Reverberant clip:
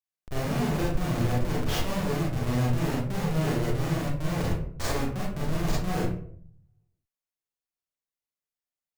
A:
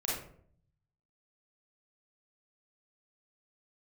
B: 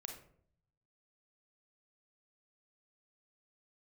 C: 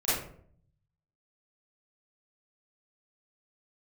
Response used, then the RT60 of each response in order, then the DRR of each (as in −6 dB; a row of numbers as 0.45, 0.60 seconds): A; 0.60, 0.60, 0.60 seconds; −6.5, 3.0, −14.0 decibels